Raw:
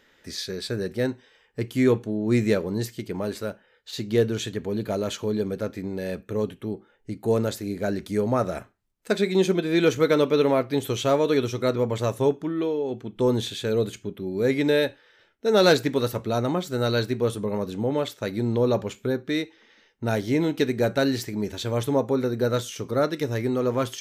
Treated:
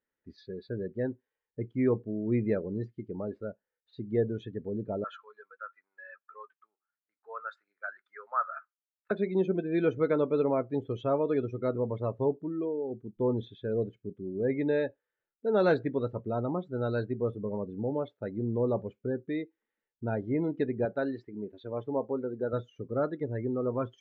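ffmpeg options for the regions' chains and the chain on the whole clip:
-filter_complex "[0:a]asettb=1/sr,asplit=3[a][b][c];[a]atrim=end=5.044[d];[b]atrim=start=5.04:end=9.11,asetpts=PTS-STARTPTS,afade=t=in:d=0.004:c=qsin,afade=t=out:st=4.066:d=0.004:c=qsin,highpass=f=1.3k:t=q:w=3.5,agate=range=-6dB:threshold=-47dB:ratio=16:release=100:detection=peak[e];[c]atrim=start=9.106[f];[d][e]acrossfade=d=0.004:c1=hsin:c2=qsin[g];[g][f]acrossfade=d=0.004:c1=qsin:c2=hsin,asettb=1/sr,asplit=3[h][i][j];[h]atrim=end=20.854[k];[i]atrim=start=20.85:end=22.53,asetpts=PTS-STARTPTS,afade=t=in:d=0.004:c=qsin,afade=t=out:st=1.676:d=0.004:c=qsin,highpass=f=290:p=1,highshelf=f=8k:g=-7.5[l];[j]atrim=start=22.526[m];[k][l]acrossfade=d=0.004:c1=hsin:c2=qsin[n];[n][m]acrossfade=d=0.004:c1=qsin:c2=hsin,afftdn=nr=22:nf=-30,lowpass=1.8k,volume=-6.5dB"

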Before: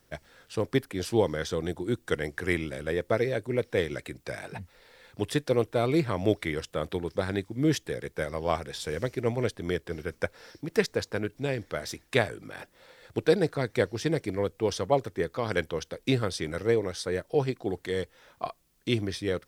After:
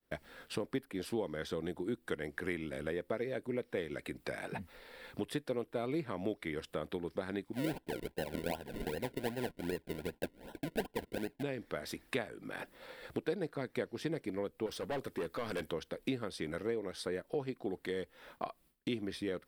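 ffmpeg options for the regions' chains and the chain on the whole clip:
-filter_complex "[0:a]asettb=1/sr,asplit=3[a][b][c];[a]atrim=end=7.534[d];[b]atrim=start=7.53:end=11.43,asetpts=PTS-STARTPTS,afade=t=in:d=0.004:c=qsin,afade=t=out:st=3.896:d=0.004:c=qsin,agate=range=-33dB:threshold=-49dB:ratio=3:release=100:detection=peak,acrusher=samples=37:mix=1:aa=0.000001:lfo=1:lforange=37:lforate=2.6,asuperstop=centerf=1200:order=12:qfactor=3.6[e];[c]atrim=start=11.426[f];[d][e]acrossfade=d=0.004:c1=hsin:c2=qsin[g];[g][f]acrossfade=d=0.004:c1=qsin:c2=hsin,asettb=1/sr,asplit=3[h][i][j];[h]atrim=end=14.664[k];[i]atrim=start=14.66:end=15.73,asetpts=PTS-STARTPTS,afade=t=in:d=0.004:c=qsin,afade=t=out:st=1.066:d=0.004:c=qsin,highshelf=f=3.5k:g=5.5,volume=28.5dB,asoftclip=hard,volume=-28.5dB[l];[j]atrim=start=15.726[m];[k][l]acrossfade=d=0.004:c1=hsin:c2=qsin[n];[n][m]acrossfade=d=0.004:c1=qsin:c2=hsin,agate=range=-33dB:threshold=-54dB:ratio=3:detection=peak,equalizer=f=100:t=o:w=0.67:g=-10,equalizer=f=250:t=o:w=0.67:g=4,equalizer=f=6.3k:t=o:w=0.67:g=-10,acompressor=threshold=-42dB:ratio=3,volume=3.5dB"

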